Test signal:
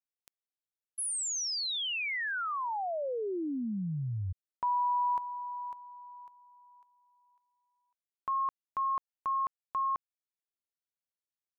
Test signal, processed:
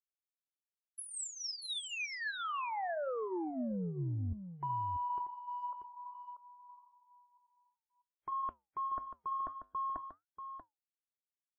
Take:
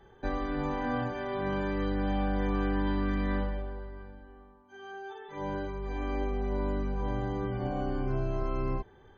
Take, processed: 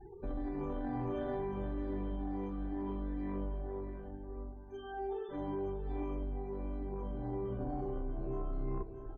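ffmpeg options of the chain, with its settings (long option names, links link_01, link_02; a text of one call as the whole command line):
ffmpeg -i in.wav -filter_complex "[0:a]afftfilt=real='re*pow(10,11/40*sin(2*PI*(0.78*log(max(b,1)*sr/1024/100)/log(2)-(2.2)*(pts-256)/sr)))':imag='im*pow(10,11/40*sin(2*PI*(0.78*log(max(b,1)*sr/1024/100)/log(2)-(2.2)*(pts-256)/sr)))':win_size=1024:overlap=0.75,afftfilt=real='re*gte(hypot(re,im),0.00355)':imag='im*gte(hypot(re,im),0.00355)':win_size=1024:overlap=0.75,tiltshelf=frequency=1100:gain=8.5,aecho=1:1:2.9:0.42,acrossover=split=420[link_01][link_02];[link_02]acompressor=threshold=-23dB:ratio=2.5:attack=0.75:release=702:knee=2.83:detection=peak[link_03];[link_01][link_03]amix=inputs=2:normalize=0,alimiter=limit=-17.5dB:level=0:latency=1:release=299,areverse,acompressor=threshold=-33dB:ratio=8:attack=2.9:release=22:knee=1:detection=peak,areverse,flanger=delay=3.7:depth=6.2:regen=-81:speed=0.61:shape=sinusoidal,asplit=2[link_04][link_05];[link_05]aecho=0:1:637:0.355[link_06];[link_04][link_06]amix=inputs=2:normalize=0,volume=1.5dB" -ar 44100 -c:a wmav2 -b:a 128k out.wma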